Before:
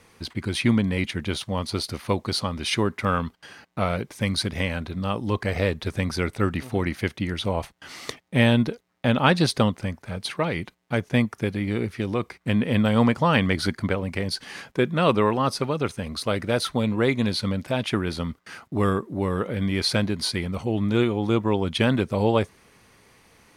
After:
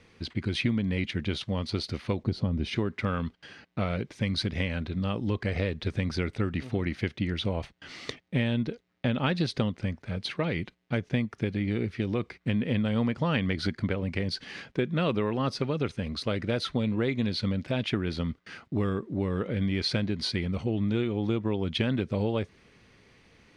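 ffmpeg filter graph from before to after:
ffmpeg -i in.wav -filter_complex "[0:a]asettb=1/sr,asplit=3[link_01][link_02][link_03];[link_01]atrim=end=2.234[link_04];[link_02]atrim=start=2.23:end=2.76,asetpts=PTS-STARTPTS,afade=type=in:duration=0.004:curve=qsin,afade=type=out:start_time=0.526:duration=0.004:curve=qsin,tiltshelf=frequency=720:gain=8.5,bandreject=frequency=1200:width=14[link_05];[link_03]atrim=start=2.756[link_06];[link_04][link_05]acrossfade=duration=0.004:curve1=hsin:curve2=qsin[link_07];[link_07][link_06]acrossfade=duration=0.004:curve1=qsin:curve2=hsin,lowpass=4200,equalizer=frequency=950:width=1:gain=-8,acompressor=threshold=-23dB:ratio=6" out.wav

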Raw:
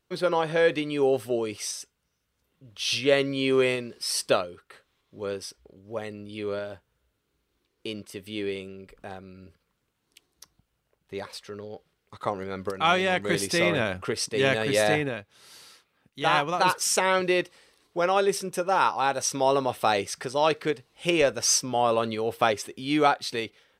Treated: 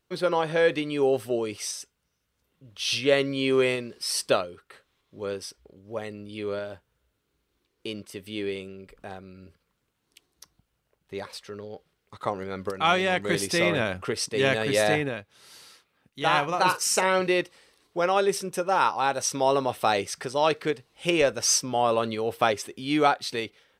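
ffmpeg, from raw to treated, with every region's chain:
ffmpeg -i in.wav -filter_complex "[0:a]asettb=1/sr,asplit=3[link_01][link_02][link_03];[link_01]atrim=end=16.384[link_04];[link_02]atrim=start=16.38:end=17.27,asetpts=PTS-STARTPTS,afade=type=in:duration=0.004:curve=qsin,afade=type=out:start_time=0.886:duration=0.004:curve=qsin,bandreject=frequency=3400:width=8.6,asplit=2[link_05][link_06];[link_06]adelay=43,volume=-12dB[link_07];[link_05][link_07]amix=inputs=2:normalize=0,atrim=end_sample=39249[link_08];[link_03]atrim=start=17.266[link_09];[link_04][link_08]acrossfade=duration=0.004:curve1=hsin:curve2=qsin[link_10];[link_10][link_09]acrossfade=duration=0.004:curve1=qsin:curve2=hsin" out.wav

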